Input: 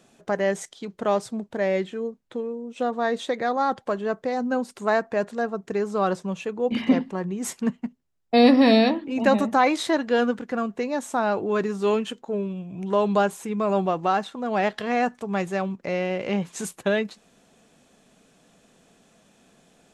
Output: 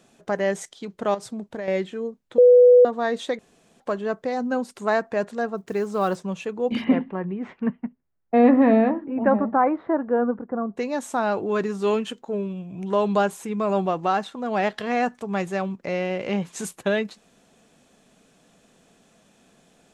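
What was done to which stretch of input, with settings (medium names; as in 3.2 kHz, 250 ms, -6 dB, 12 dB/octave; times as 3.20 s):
1.14–1.68 s: compression 12:1, threshold -27 dBFS
2.38–2.85 s: bleep 493 Hz -8.5 dBFS
3.39–3.80 s: room tone
5.57–6.24 s: block-companded coder 7-bit
6.83–10.76 s: low-pass 2.9 kHz -> 1.1 kHz 24 dB/octave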